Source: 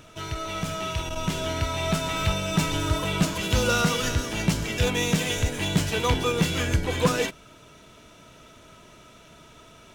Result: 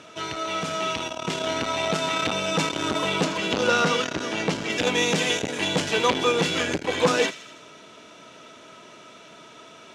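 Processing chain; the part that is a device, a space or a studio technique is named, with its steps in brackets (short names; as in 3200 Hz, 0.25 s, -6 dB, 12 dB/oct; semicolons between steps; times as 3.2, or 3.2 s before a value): 3.24–4.7 high shelf 5900 Hz -9 dB; thin delay 82 ms, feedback 61%, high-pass 2400 Hz, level -14 dB; public-address speaker with an overloaded transformer (core saturation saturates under 460 Hz; BPF 240–6800 Hz); gain +5 dB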